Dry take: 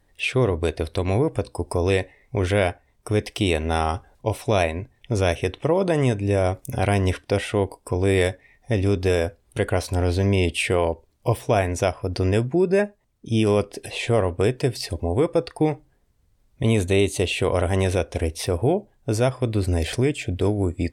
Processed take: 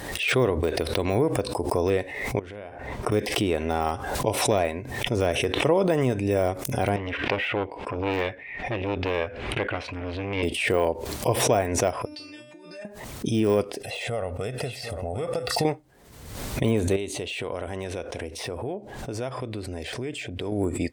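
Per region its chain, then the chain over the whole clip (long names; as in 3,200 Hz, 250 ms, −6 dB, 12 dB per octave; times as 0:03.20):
0:02.39–0:03.12: low-pass filter 1,400 Hz 6 dB per octave + downward compressor 10 to 1, threshold −34 dBFS + double-tracking delay 48 ms −14 dB
0:06.96–0:10.43: low-pass with resonance 2,500 Hz, resonance Q 2.5 + saturating transformer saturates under 1,200 Hz
0:12.05–0:12.85: parametric band 3,900 Hz +12.5 dB 2.4 octaves + compressor whose output falls as the input rises −23 dBFS + tuned comb filter 300 Hz, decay 0.39 s, mix 100%
0:13.80–0:15.65: comb filter 1.5 ms, depth 66% + downward compressor 10 to 1, threshold −23 dBFS + single-tap delay 745 ms −12.5 dB
0:16.96–0:20.52: high-shelf EQ 9,100 Hz −11.5 dB + downward compressor 3 to 1, threshold −29 dBFS
whole clip: de-essing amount 90%; high-pass filter 210 Hz 6 dB per octave; background raised ahead of every attack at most 51 dB per second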